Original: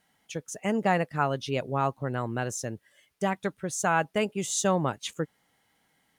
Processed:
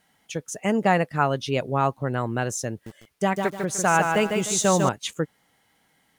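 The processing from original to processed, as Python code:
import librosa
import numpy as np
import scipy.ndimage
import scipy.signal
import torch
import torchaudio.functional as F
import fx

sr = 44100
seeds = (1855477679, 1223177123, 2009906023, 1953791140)

y = fx.echo_crushed(x, sr, ms=150, feedback_pct=35, bits=8, wet_db=-4.5, at=(2.71, 4.89))
y = y * 10.0 ** (4.5 / 20.0)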